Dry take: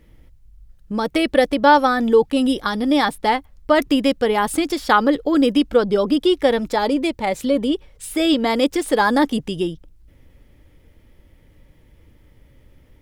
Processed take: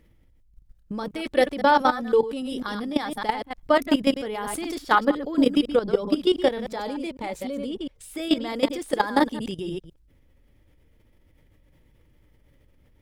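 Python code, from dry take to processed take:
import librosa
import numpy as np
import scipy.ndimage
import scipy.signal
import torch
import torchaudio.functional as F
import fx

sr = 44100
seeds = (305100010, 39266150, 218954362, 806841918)

y = fx.reverse_delay(x, sr, ms=101, wet_db=-7.0)
y = fx.level_steps(y, sr, step_db=14)
y = y * 10.0 ** (-2.0 / 20.0)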